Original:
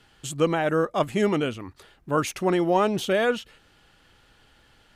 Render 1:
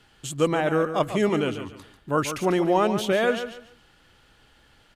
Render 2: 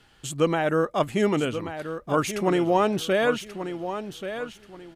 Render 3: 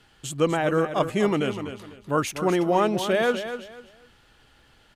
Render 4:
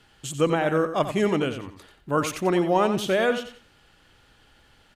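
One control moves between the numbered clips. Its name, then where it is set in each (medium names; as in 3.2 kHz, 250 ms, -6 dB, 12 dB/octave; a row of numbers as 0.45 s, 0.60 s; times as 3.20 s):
feedback delay, time: 143 ms, 1133 ms, 248 ms, 90 ms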